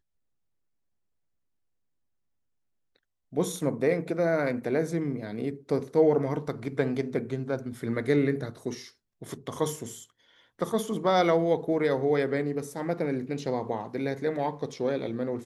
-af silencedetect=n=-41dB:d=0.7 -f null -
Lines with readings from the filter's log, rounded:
silence_start: 0.00
silence_end: 3.33 | silence_duration: 3.33